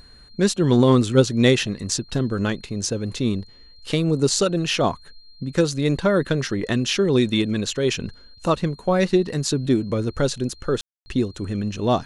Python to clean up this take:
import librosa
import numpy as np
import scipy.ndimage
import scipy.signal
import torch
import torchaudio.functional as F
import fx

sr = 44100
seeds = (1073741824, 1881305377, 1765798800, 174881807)

y = fx.notch(x, sr, hz=4200.0, q=30.0)
y = fx.fix_ambience(y, sr, seeds[0], print_start_s=3.41, print_end_s=3.91, start_s=10.81, end_s=11.06)